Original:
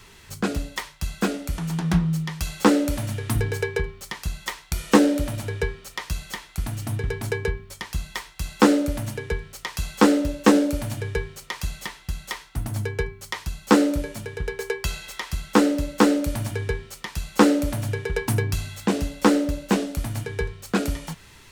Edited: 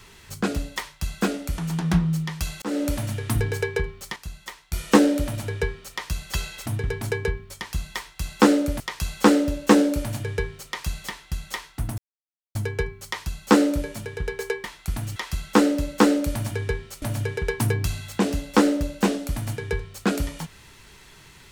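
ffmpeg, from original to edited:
ffmpeg -i in.wav -filter_complex "[0:a]asplit=11[link_01][link_02][link_03][link_04][link_05][link_06][link_07][link_08][link_09][link_10][link_11];[link_01]atrim=end=2.62,asetpts=PTS-STARTPTS,afade=type=out:start_time=2.616:duration=0.004:curve=hsin[link_12];[link_02]atrim=start=2.62:end=4.162,asetpts=PTS-STARTPTS,afade=type=in:duration=0.26[link_13];[link_03]atrim=start=4.158:end=4.732,asetpts=PTS-STARTPTS,volume=-7.5dB[link_14];[link_04]atrim=start=4.728:end=6.342[link_15];[link_05]atrim=start=14.838:end=15.162[link_16];[link_06]atrim=start=6.858:end=9.002[link_17];[link_07]atrim=start=9.568:end=12.75,asetpts=PTS-STARTPTS,afade=type=out:start_time=3.178:duration=0.004:curve=hsin,apad=pad_dur=0.57[link_18];[link_08]atrim=start=12.75:end=14.842,asetpts=PTS-STARTPTS,afade=type=in:duration=0.004:curve=hsin[link_19];[link_09]atrim=start=6.338:end=6.862[link_20];[link_10]atrim=start=15.158:end=17.022[link_21];[link_11]atrim=start=17.698[link_22];[link_12][link_13]concat=n=2:v=0:a=1[link_23];[link_23][link_14]acrossfade=duration=0.004:curve1=hsin:curve2=hsin[link_24];[link_24][link_15]acrossfade=duration=0.004:curve1=hsin:curve2=hsin[link_25];[link_25][link_16]acrossfade=duration=0.004:curve1=hsin:curve2=hsin[link_26];[link_26][link_17]acrossfade=duration=0.004:curve1=hsin:curve2=hsin[link_27];[link_18][link_19]concat=n=2:v=0:a=1[link_28];[link_27][link_28]acrossfade=duration=0.004:curve1=hsin:curve2=hsin[link_29];[link_29][link_20]acrossfade=duration=0.004:curve1=hsin:curve2=hsin[link_30];[link_30][link_21]acrossfade=duration=0.004:curve1=hsin:curve2=hsin[link_31];[link_31][link_22]acrossfade=duration=0.004:curve1=hsin:curve2=hsin" out.wav

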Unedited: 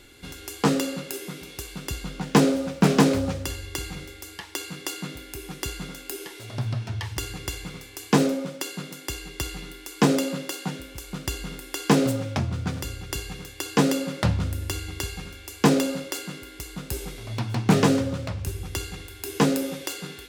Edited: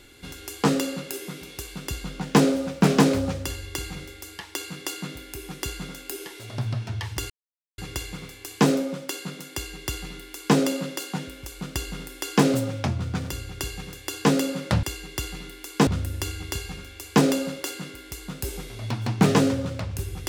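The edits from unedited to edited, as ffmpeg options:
ffmpeg -i in.wav -filter_complex "[0:a]asplit=4[link_01][link_02][link_03][link_04];[link_01]atrim=end=7.3,asetpts=PTS-STARTPTS,afade=type=out:start_time=7.296:duration=0.004:curve=hsin,apad=pad_dur=0.48[link_05];[link_02]atrim=start=7.3:end=14.352,asetpts=PTS-STARTPTS,afade=type=in:duration=0.004:curve=hsin[link_06];[link_03]atrim=start=9.048:end=10.092[link_07];[link_04]atrim=start=14.348[link_08];[link_05][link_06]concat=n=2:v=0:a=1[link_09];[link_09][link_07]acrossfade=duration=0.004:curve1=hsin:curve2=hsin[link_10];[link_10][link_08]acrossfade=duration=0.004:curve1=hsin:curve2=hsin" out.wav

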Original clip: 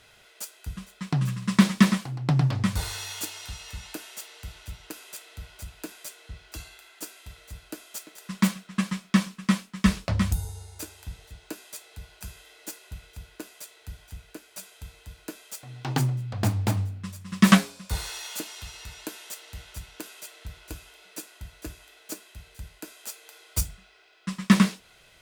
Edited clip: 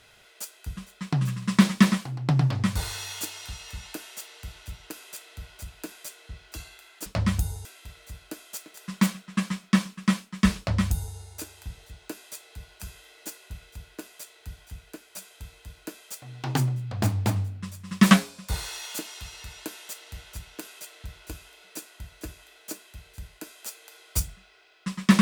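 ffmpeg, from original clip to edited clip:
ffmpeg -i in.wav -filter_complex "[0:a]asplit=3[link_01][link_02][link_03];[link_01]atrim=end=7.062[link_04];[link_02]atrim=start=9.988:end=10.582[link_05];[link_03]atrim=start=7.058[link_06];[link_04][link_05]acrossfade=duration=0.004:curve1=hsin:curve2=hsin[link_07];[link_07][link_06]acrossfade=duration=0.004:curve1=hsin:curve2=hsin" out.wav

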